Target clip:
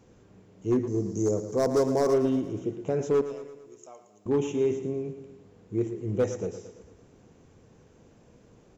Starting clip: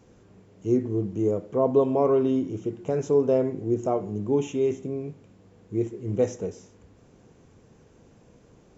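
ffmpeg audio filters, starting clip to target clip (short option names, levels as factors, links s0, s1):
-filter_complex "[0:a]asettb=1/sr,asplit=3[s0][s1][s2];[s0]atrim=end=3.214[s3];[s1]atrim=start=3.21:end=4.26,asetpts=PTS-STARTPTS,afade=t=in:d=0.004:c=qsin,afade=t=out:st=1.046:d=0.004:c=qsin,aderivative[s4];[s2]atrim=start=4.256[s5];[s3][s4]acrossfade=d=0.004:c1=hsin:c2=qsin[s6];[s6][s5]acrossfade=d=0.004:c1=qsin:c2=hsin,asoftclip=type=hard:threshold=0.15,asettb=1/sr,asplit=3[s7][s8][s9];[s7]atrim=end=0.874[s10];[s8]atrim=start=0.87:end=2.14,asetpts=PTS-STARTPTS,afade=t=in:d=0.004:c=qsin,afade=t=out:st=1.266:d=0.004:c=qsin,highshelf=f=4100:t=q:w=3:g=12[s11];[s9]atrim=start=2.136[s12];[s10][s11]acrossfade=d=0.004:c1=hsin:c2=qsin[s13];[s13][s12]acrossfade=d=0.004:c1=qsin:c2=hsin,asplit=2[s14][s15];[s15]aecho=0:1:113|226|339|452|565|678:0.251|0.138|0.076|0.0418|0.023|0.0126[s16];[s14][s16]amix=inputs=2:normalize=0,volume=0.841"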